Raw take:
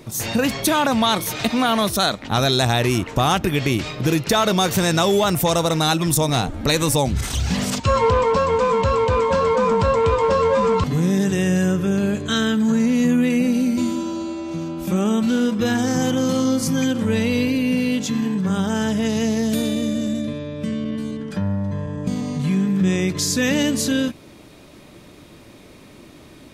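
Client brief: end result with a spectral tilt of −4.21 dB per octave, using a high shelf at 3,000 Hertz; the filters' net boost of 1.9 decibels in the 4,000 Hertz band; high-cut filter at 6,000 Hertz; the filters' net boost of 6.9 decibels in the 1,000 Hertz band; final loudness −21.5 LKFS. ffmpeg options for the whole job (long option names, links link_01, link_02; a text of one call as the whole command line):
ffmpeg -i in.wav -af "lowpass=6000,equalizer=frequency=1000:width_type=o:gain=8.5,highshelf=frequency=3000:gain=-6,equalizer=frequency=4000:width_type=o:gain=6.5,volume=-3.5dB" out.wav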